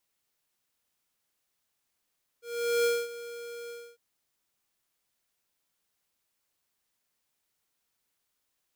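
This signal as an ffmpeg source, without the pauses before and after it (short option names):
-f lavfi -i "aevalsrc='0.0596*(2*lt(mod(472*t,1),0.5)-1)':d=1.552:s=44100,afade=t=in:d=0.426,afade=t=out:st=0.426:d=0.231:silence=0.15,afade=t=out:st=1.28:d=0.272"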